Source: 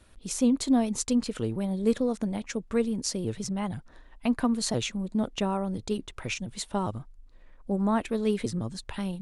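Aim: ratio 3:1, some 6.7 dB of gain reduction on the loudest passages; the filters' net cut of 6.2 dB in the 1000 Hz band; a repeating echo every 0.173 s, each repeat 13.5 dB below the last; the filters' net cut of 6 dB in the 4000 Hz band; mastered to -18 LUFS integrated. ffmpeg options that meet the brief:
-af "equalizer=f=1k:t=o:g=-8,equalizer=f=4k:t=o:g=-7.5,acompressor=threshold=-28dB:ratio=3,aecho=1:1:173|346:0.211|0.0444,volume=15.5dB"

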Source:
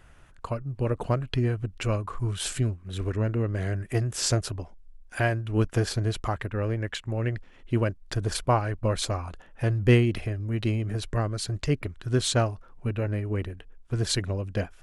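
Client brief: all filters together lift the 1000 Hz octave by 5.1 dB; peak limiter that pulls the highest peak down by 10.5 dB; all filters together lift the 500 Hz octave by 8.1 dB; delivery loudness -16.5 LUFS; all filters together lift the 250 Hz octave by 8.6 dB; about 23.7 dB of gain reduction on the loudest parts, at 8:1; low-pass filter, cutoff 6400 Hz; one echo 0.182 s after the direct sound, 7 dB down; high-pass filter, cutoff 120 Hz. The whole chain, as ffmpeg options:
-af "highpass=120,lowpass=6.4k,equalizer=f=250:t=o:g=9,equalizer=f=500:t=o:g=6.5,equalizer=f=1k:t=o:g=3.5,acompressor=threshold=-33dB:ratio=8,alimiter=level_in=5dB:limit=-24dB:level=0:latency=1,volume=-5dB,aecho=1:1:182:0.447,volume=23.5dB"

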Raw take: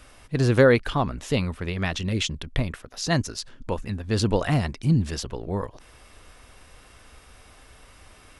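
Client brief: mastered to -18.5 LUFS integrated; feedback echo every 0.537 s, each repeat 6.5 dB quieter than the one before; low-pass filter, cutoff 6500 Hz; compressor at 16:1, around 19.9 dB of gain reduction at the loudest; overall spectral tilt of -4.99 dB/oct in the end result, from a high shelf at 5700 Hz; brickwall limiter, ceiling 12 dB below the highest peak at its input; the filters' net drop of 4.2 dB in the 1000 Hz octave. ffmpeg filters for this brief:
-af "lowpass=6.5k,equalizer=f=1k:t=o:g=-6,highshelf=f=5.7k:g=4.5,acompressor=threshold=-32dB:ratio=16,alimiter=level_in=4dB:limit=-24dB:level=0:latency=1,volume=-4dB,aecho=1:1:537|1074|1611|2148|2685|3222:0.473|0.222|0.105|0.0491|0.0231|0.0109,volume=20dB"

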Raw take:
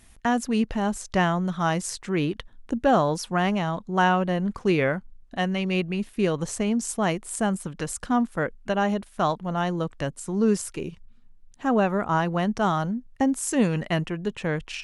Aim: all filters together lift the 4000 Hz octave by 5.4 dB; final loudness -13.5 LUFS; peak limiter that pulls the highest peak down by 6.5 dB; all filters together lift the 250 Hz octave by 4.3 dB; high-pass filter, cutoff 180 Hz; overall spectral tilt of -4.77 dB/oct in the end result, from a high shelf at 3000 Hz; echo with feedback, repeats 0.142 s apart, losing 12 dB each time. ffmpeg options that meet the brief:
-af "highpass=180,equalizer=f=250:t=o:g=7.5,highshelf=f=3k:g=5,equalizer=f=4k:t=o:g=4,alimiter=limit=-12dB:level=0:latency=1,aecho=1:1:142|284|426:0.251|0.0628|0.0157,volume=10dB"

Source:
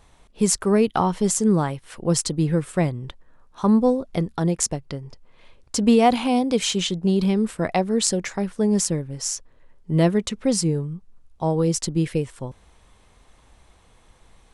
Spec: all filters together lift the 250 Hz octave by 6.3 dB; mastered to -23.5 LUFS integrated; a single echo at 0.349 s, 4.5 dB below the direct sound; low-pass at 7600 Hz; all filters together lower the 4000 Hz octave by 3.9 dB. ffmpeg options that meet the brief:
-af "lowpass=7.6k,equalizer=f=250:t=o:g=8,equalizer=f=4k:t=o:g=-5,aecho=1:1:349:0.596,volume=-7dB"

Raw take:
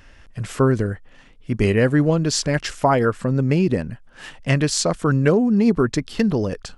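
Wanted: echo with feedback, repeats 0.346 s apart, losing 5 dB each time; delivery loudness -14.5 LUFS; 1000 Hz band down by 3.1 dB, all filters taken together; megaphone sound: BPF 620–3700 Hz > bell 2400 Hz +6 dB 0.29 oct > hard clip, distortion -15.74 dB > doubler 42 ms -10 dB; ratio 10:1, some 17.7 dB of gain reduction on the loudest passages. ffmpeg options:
-filter_complex "[0:a]equalizer=f=1k:t=o:g=-3,acompressor=threshold=-31dB:ratio=10,highpass=620,lowpass=3.7k,equalizer=f=2.4k:t=o:w=0.29:g=6,aecho=1:1:346|692|1038|1384|1730|2076|2422:0.562|0.315|0.176|0.0988|0.0553|0.031|0.0173,asoftclip=type=hard:threshold=-33dB,asplit=2[a][b];[b]adelay=42,volume=-10dB[c];[a][c]amix=inputs=2:normalize=0,volume=27dB"

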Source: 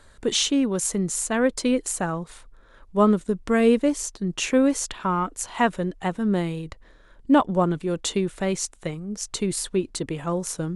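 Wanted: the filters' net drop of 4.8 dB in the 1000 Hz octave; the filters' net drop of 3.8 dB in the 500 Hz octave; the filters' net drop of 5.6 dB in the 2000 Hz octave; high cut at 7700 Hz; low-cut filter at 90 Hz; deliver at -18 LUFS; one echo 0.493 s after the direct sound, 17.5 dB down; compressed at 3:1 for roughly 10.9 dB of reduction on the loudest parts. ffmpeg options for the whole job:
-af "highpass=90,lowpass=7.7k,equalizer=f=500:t=o:g=-3.5,equalizer=f=1k:t=o:g=-3.5,equalizer=f=2k:t=o:g=-6,acompressor=threshold=-30dB:ratio=3,aecho=1:1:493:0.133,volume=15dB"

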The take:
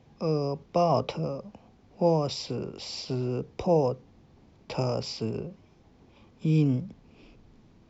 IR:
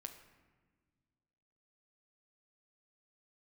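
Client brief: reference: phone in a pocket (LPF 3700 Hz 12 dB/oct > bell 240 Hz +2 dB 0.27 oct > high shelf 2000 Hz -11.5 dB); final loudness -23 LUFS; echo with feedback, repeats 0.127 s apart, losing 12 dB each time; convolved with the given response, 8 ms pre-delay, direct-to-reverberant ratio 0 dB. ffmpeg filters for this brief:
-filter_complex "[0:a]aecho=1:1:127|254|381:0.251|0.0628|0.0157,asplit=2[a][b];[1:a]atrim=start_sample=2205,adelay=8[c];[b][c]afir=irnorm=-1:irlink=0,volume=4.5dB[d];[a][d]amix=inputs=2:normalize=0,lowpass=3.7k,equalizer=f=240:t=o:w=0.27:g=2,highshelf=f=2k:g=-11.5,volume=2.5dB"

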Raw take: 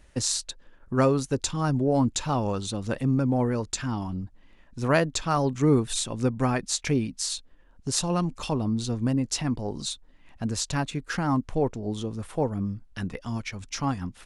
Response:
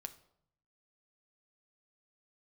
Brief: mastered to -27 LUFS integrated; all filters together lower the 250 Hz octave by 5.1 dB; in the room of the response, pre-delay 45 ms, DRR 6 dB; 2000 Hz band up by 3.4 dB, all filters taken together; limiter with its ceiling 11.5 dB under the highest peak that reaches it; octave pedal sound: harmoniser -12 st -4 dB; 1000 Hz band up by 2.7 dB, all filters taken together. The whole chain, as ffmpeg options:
-filter_complex "[0:a]equalizer=f=250:t=o:g=-6.5,equalizer=f=1k:t=o:g=3,equalizer=f=2k:t=o:g=3.5,alimiter=limit=-18dB:level=0:latency=1,asplit=2[a][b];[1:a]atrim=start_sample=2205,adelay=45[c];[b][c]afir=irnorm=-1:irlink=0,volume=-2dB[d];[a][d]amix=inputs=2:normalize=0,asplit=2[e][f];[f]asetrate=22050,aresample=44100,atempo=2,volume=-4dB[g];[e][g]amix=inputs=2:normalize=0,volume=0.5dB"

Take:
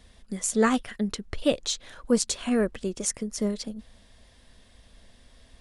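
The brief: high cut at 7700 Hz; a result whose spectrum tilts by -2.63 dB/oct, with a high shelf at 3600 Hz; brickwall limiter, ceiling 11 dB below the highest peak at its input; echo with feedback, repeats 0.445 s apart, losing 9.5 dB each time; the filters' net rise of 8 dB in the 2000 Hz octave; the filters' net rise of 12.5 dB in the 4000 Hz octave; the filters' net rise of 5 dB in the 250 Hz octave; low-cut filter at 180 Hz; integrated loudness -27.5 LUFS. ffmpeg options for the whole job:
-af "highpass=180,lowpass=7.7k,equalizer=f=250:t=o:g=7,equalizer=f=2k:t=o:g=5.5,highshelf=f=3.6k:g=9,equalizer=f=4k:t=o:g=8,alimiter=limit=-10.5dB:level=0:latency=1,aecho=1:1:445|890|1335|1780:0.335|0.111|0.0365|0.012,volume=-4dB"

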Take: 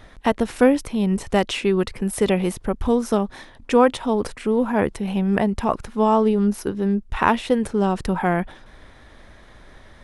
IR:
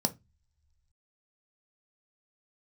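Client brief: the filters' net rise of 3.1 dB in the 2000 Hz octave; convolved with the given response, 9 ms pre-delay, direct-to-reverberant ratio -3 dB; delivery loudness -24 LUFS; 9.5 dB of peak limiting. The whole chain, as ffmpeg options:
-filter_complex "[0:a]equalizer=f=2k:t=o:g=4,alimiter=limit=-9.5dB:level=0:latency=1,asplit=2[a][b];[1:a]atrim=start_sample=2205,adelay=9[c];[b][c]afir=irnorm=-1:irlink=0,volume=-2.5dB[d];[a][d]amix=inputs=2:normalize=0,volume=-12.5dB"

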